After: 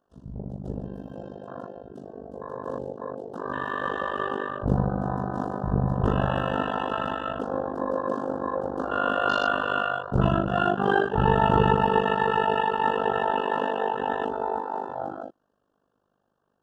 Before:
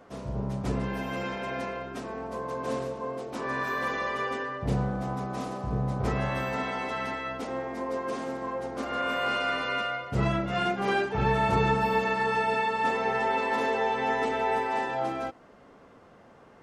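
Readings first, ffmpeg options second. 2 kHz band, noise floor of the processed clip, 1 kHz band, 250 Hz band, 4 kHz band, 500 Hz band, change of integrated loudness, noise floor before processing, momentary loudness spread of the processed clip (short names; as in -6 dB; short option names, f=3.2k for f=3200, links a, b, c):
+0.5 dB, -74 dBFS, +3.0 dB, +3.5 dB, +0.5 dB, +3.0 dB, +3.0 dB, -54 dBFS, 17 LU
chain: -af "tremolo=f=50:d=0.919,dynaudnorm=f=580:g=13:m=9dB,afwtdn=0.0251,asuperstop=centerf=2200:order=8:qfactor=2.3"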